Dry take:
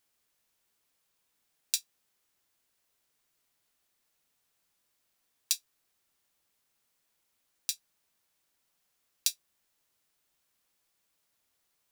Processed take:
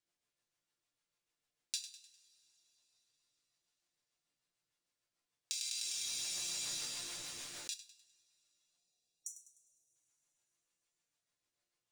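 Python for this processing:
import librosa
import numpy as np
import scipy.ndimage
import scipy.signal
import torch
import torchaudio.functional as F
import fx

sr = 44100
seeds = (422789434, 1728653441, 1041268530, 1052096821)

p1 = fx.rotary(x, sr, hz=6.7)
p2 = fx.spec_erase(p1, sr, start_s=8.78, length_s=1.17, low_hz=860.0, high_hz=5700.0)
p3 = scipy.signal.savgol_filter(p2, 9, 4, mode='constant')
p4 = fx.resonator_bank(p3, sr, root=46, chord='major', decay_s=0.2)
p5 = p4 + fx.echo_feedback(p4, sr, ms=101, feedback_pct=46, wet_db=-12.0, dry=0)
p6 = fx.rev_double_slope(p5, sr, seeds[0], early_s=0.45, late_s=4.6, knee_db=-18, drr_db=10.5)
p7 = fx.env_flatten(p6, sr, amount_pct=100, at=(5.53, 7.74))
y = F.gain(torch.from_numpy(p7), 4.5).numpy()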